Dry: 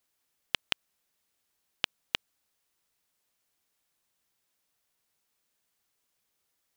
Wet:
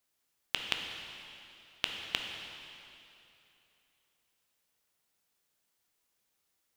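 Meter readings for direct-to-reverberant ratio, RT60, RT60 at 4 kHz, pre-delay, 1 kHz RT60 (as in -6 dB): 2.5 dB, 2.9 s, 2.7 s, 6 ms, 2.9 s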